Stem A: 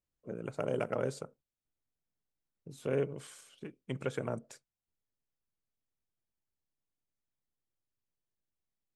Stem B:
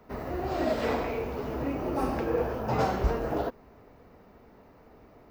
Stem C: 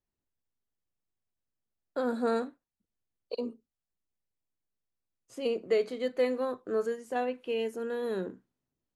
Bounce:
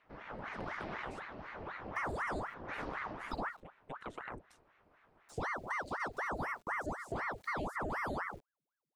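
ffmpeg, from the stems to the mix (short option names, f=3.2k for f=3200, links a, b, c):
-filter_complex "[0:a]bass=f=250:g=5,treble=f=4k:g=-4,volume=-8dB[a];[1:a]lowpass=f=4.6k:w=0.5412,lowpass=f=4.6k:w=1.3066,volume=-11dB[b];[2:a]equalizer=f=125:t=o:w=1:g=11,equalizer=f=250:t=o:w=1:g=7,equalizer=f=500:t=o:w=1:g=7,equalizer=f=1k:t=o:w=1:g=-7,equalizer=f=2k:t=o:w=1:g=-7,equalizer=f=4k:t=o:w=1:g=7,equalizer=f=8k:t=o:w=1:g=12,alimiter=limit=-18.5dB:level=0:latency=1:release=153,aeval=exprs='val(0)*gte(abs(val(0)),0.00237)':c=same,volume=-1dB[c];[a][b][c]amix=inputs=3:normalize=0,acrossover=split=270|4100[d][e][f];[d]acompressor=threshold=-39dB:ratio=4[g];[e]acompressor=threshold=-38dB:ratio=4[h];[f]acompressor=threshold=-60dB:ratio=4[i];[g][h][i]amix=inputs=3:normalize=0,aeval=exprs='val(0)*sin(2*PI*910*n/s+910*0.85/4*sin(2*PI*4*n/s))':c=same"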